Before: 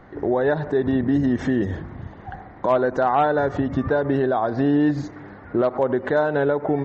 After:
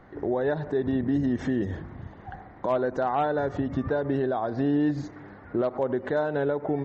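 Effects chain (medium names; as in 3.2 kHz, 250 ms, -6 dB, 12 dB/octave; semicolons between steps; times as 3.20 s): dynamic bell 1.3 kHz, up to -3 dB, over -32 dBFS, Q 0.75; trim -5 dB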